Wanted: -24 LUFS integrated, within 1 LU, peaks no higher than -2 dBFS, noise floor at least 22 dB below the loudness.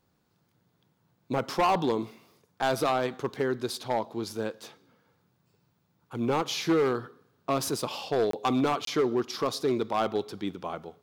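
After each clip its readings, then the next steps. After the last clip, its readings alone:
clipped 1.7%; flat tops at -19.5 dBFS; dropouts 2; longest dropout 23 ms; loudness -29.0 LUFS; peak -19.5 dBFS; loudness target -24.0 LUFS
-> clip repair -19.5 dBFS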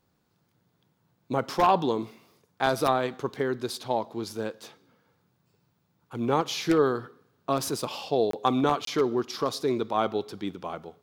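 clipped 0.0%; dropouts 2; longest dropout 23 ms
-> interpolate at 8.31/8.85, 23 ms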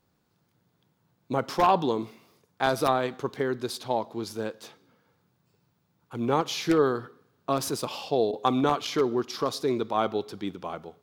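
dropouts 0; loudness -27.5 LUFS; peak -10.5 dBFS; loudness target -24.0 LUFS
-> gain +3.5 dB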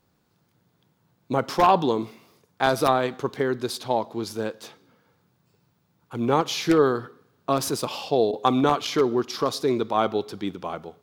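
loudness -24.0 LUFS; peak -7.0 dBFS; noise floor -68 dBFS

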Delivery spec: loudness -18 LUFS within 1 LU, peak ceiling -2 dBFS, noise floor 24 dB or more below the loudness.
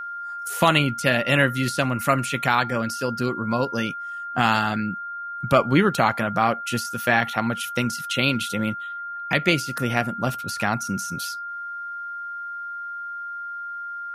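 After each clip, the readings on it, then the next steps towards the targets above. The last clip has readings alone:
steady tone 1400 Hz; tone level -30 dBFS; loudness -24.0 LUFS; peak -4.0 dBFS; loudness target -18.0 LUFS
-> notch 1400 Hz, Q 30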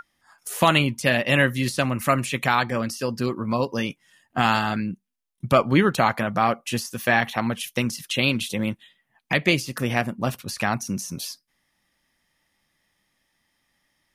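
steady tone none; loudness -23.5 LUFS; peak -4.5 dBFS; loudness target -18.0 LUFS
-> gain +5.5 dB; limiter -2 dBFS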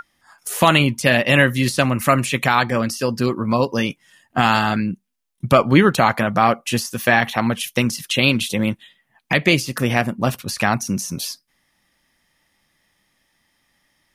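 loudness -18.5 LUFS; peak -2.0 dBFS; noise floor -69 dBFS

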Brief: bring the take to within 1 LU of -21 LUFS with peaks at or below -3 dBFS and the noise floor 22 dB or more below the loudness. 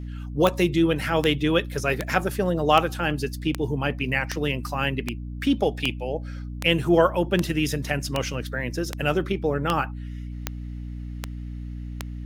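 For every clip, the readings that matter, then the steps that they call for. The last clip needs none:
clicks 16; hum 60 Hz; harmonics up to 300 Hz; hum level -31 dBFS; loudness -24.5 LUFS; peak -3.0 dBFS; loudness target -21.0 LUFS
-> de-click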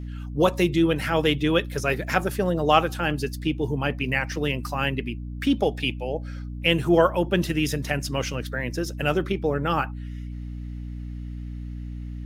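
clicks 0; hum 60 Hz; harmonics up to 300 Hz; hum level -31 dBFS
-> notches 60/120/180/240/300 Hz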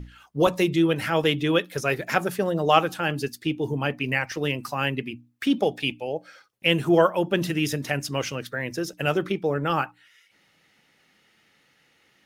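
hum none; loudness -25.0 LUFS; peak -4.5 dBFS; loudness target -21.0 LUFS
-> gain +4 dB; limiter -3 dBFS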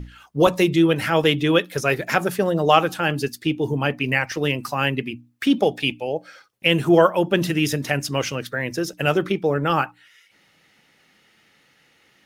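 loudness -21.0 LUFS; peak -3.0 dBFS; noise floor -60 dBFS

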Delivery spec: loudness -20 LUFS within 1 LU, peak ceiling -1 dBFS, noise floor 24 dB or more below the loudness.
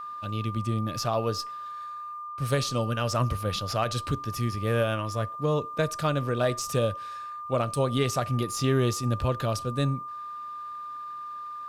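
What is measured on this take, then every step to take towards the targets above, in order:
steady tone 1200 Hz; tone level -35 dBFS; loudness -29.0 LUFS; peak -14.0 dBFS; loudness target -20.0 LUFS
-> notch 1200 Hz, Q 30; gain +9 dB

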